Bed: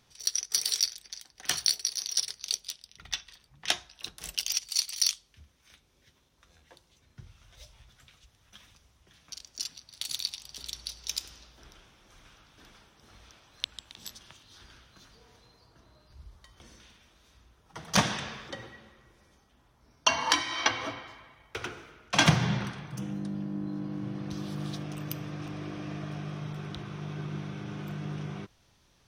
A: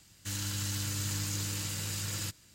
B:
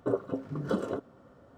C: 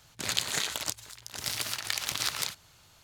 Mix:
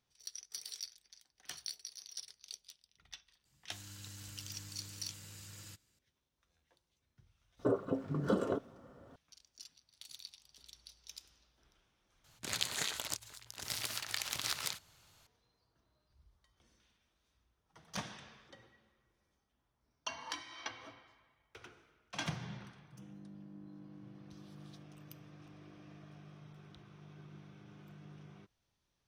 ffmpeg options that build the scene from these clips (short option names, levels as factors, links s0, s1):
-filter_complex "[0:a]volume=0.133[s0];[2:a]alimiter=limit=0.112:level=0:latency=1:release=35[s1];[s0]asplit=2[s2][s3];[s2]atrim=end=12.244[s4];[3:a]atrim=end=3.03,asetpts=PTS-STARTPTS,volume=0.473[s5];[s3]atrim=start=15.266[s6];[1:a]atrim=end=2.54,asetpts=PTS-STARTPTS,volume=0.158,afade=t=in:d=0.004:c=hsin,afade=t=out:st=2.536:d=0.004:c=hsin,adelay=152145S[s7];[s1]atrim=end=1.57,asetpts=PTS-STARTPTS,volume=0.891,afade=t=in:d=0.004:c=hsin,afade=t=out:st=1.566:d=0.004:c=hsin,adelay=7590[s8];[s4][s5]acrossfade=d=0.004:c1=hsin:c2=hsin[s9];[s9][s6]acrossfade=d=0.004:c1=hsin:c2=hsin[s10];[s10][s7][s8]amix=inputs=3:normalize=0"